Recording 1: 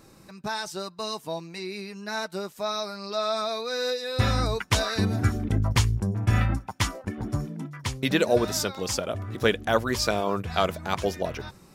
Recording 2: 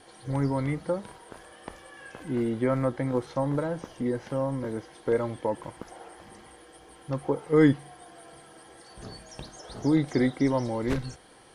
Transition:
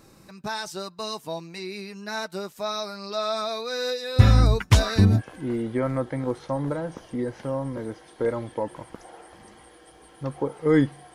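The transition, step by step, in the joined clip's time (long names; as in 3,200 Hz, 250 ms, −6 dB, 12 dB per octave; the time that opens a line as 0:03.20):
recording 1
0:04.16–0:05.22: low-shelf EQ 230 Hz +11.5 dB
0:05.19: continue with recording 2 from 0:02.06, crossfade 0.06 s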